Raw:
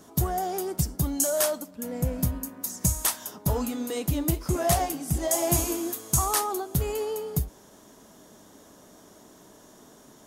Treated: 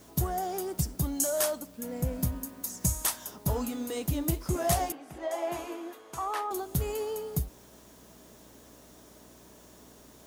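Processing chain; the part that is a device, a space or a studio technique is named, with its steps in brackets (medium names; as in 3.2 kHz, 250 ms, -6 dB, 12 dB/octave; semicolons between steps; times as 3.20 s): video cassette with head-switching buzz (mains buzz 60 Hz, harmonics 11, -57 dBFS -3 dB/octave; white noise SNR 29 dB); 4.92–6.51 s: three-band isolator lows -21 dB, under 350 Hz, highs -21 dB, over 3.2 kHz; trim -3.5 dB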